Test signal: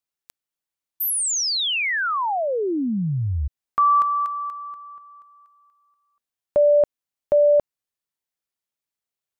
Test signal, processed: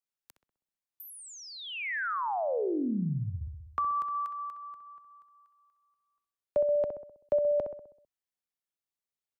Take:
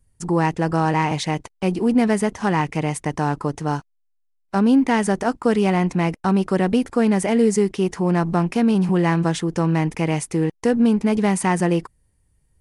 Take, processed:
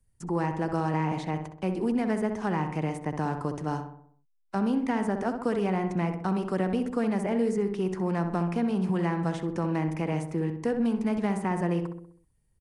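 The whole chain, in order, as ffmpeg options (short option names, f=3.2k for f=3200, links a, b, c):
-filter_complex "[0:a]asplit=2[a][b];[b]adelay=64,lowpass=f=1.6k:p=1,volume=-6.5dB,asplit=2[c][d];[d]adelay=64,lowpass=f=1.6k:p=1,volume=0.54,asplit=2[e][f];[f]adelay=64,lowpass=f=1.6k:p=1,volume=0.54,asplit=2[g][h];[h]adelay=64,lowpass=f=1.6k:p=1,volume=0.54,asplit=2[i][j];[j]adelay=64,lowpass=f=1.6k:p=1,volume=0.54,asplit=2[k][l];[l]adelay=64,lowpass=f=1.6k:p=1,volume=0.54,asplit=2[m][n];[n]adelay=64,lowpass=f=1.6k:p=1,volume=0.54[o];[a][c][e][g][i][k][m][o]amix=inputs=8:normalize=0,acrossover=split=130|600|2200[p][q][r][s];[p]acompressor=threshold=-32dB:ratio=4[t];[q]acompressor=threshold=-18dB:ratio=4[u];[r]acompressor=threshold=-23dB:ratio=4[v];[s]acompressor=threshold=-43dB:ratio=4[w];[t][u][v][w]amix=inputs=4:normalize=0,volume=-7.5dB"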